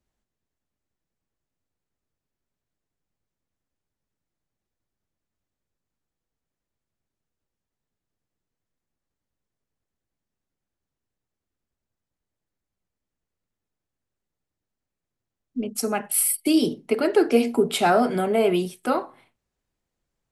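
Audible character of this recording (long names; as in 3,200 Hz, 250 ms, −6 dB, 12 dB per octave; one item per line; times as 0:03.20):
background noise floor −87 dBFS
spectral slope −4.0 dB per octave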